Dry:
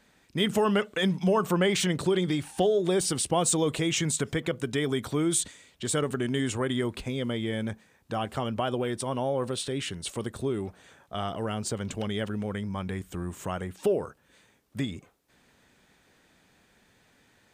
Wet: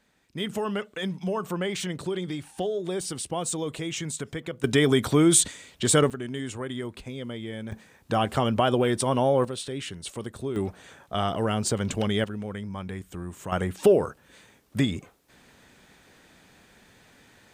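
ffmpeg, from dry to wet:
-af "asetnsamples=n=441:p=0,asendcmd='4.64 volume volume 7.5dB;6.1 volume volume -5dB;7.72 volume volume 6.5dB;9.45 volume volume -2dB;10.56 volume volume 5.5dB;12.24 volume volume -2dB;13.52 volume volume 7dB',volume=0.562"

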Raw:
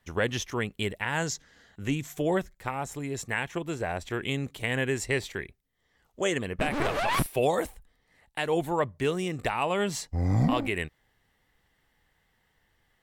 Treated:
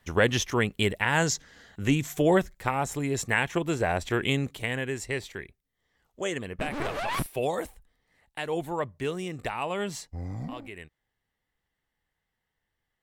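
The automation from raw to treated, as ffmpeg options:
-af "volume=1.78,afade=t=out:st=4.25:d=0.55:silence=0.375837,afade=t=out:st=9.91:d=0.45:silence=0.354813"

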